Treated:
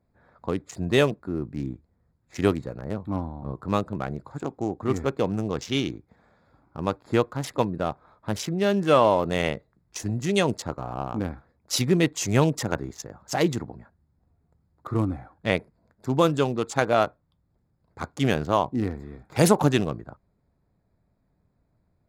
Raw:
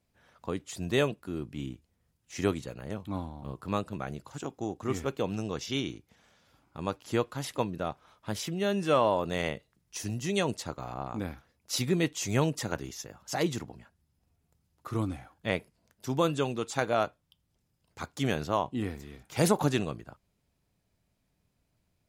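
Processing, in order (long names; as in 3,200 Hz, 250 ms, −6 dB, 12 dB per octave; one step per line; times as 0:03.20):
adaptive Wiener filter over 15 samples
level +6.5 dB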